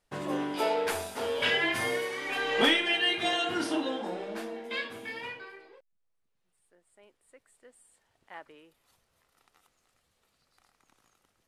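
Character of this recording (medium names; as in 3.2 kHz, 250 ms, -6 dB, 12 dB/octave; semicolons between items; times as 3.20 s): noise floor -76 dBFS; spectral tilt -2.5 dB/octave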